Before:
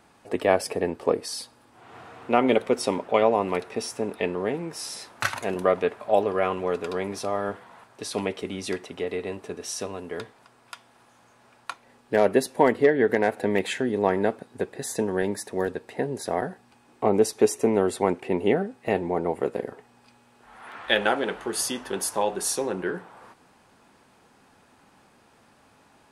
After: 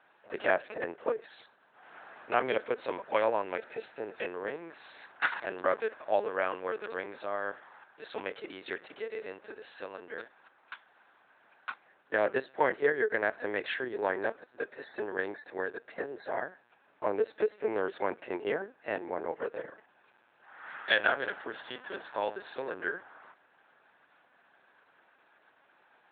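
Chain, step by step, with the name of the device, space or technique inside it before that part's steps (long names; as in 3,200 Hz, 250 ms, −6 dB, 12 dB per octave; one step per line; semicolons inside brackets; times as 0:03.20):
talking toy (linear-prediction vocoder at 8 kHz pitch kept; high-pass filter 380 Hz 12 dB per octave; parametric band 1,600 Hz +9.5 dB 0.43 octaves)
0:03.42–0:04.14: notch filter 1,100 Hz, Q 6
level −6.5 dB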